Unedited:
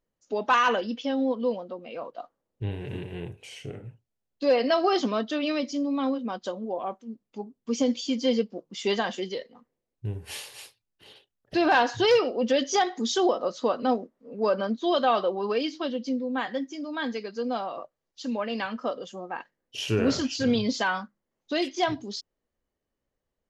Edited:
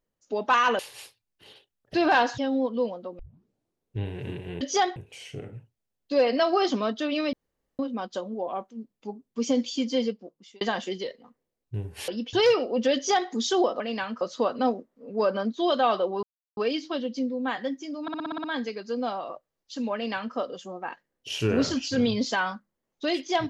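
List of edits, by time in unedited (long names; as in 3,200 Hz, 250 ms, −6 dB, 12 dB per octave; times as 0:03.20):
0:00.79–0:01.04: swap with 0:10.39–0:11.98
0:01.85: tape start 0.79 s
0:05.64–0:06.10: fill with room tone
0:08.16–0:08.92: fade out
0:12.60–0:12.95: duplicate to 0:03.27
0:15.47: splice in silence 0.34 s
0:16.92: stutter 0.06 s, 8 plays
0:18.42–0:18.83: duplicate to 0:13.45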